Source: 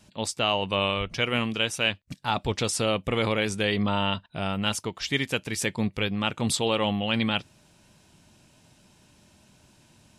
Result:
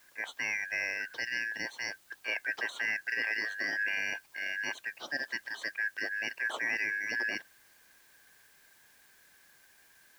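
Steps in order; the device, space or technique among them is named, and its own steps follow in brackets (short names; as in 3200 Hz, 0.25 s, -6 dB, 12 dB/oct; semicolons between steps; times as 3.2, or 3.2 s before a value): split-band scrambled radio (four-band scrambler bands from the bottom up 3142; BPF 350–3100 Hz; white noise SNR 27 dB); gain -6.5 dB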